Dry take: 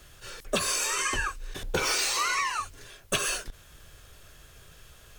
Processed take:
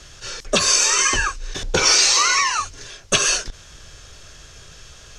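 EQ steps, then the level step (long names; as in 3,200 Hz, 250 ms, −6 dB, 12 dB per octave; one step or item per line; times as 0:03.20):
low-pass with resonance 6,000 Hz, resonance Q 2.6
+8.0 dB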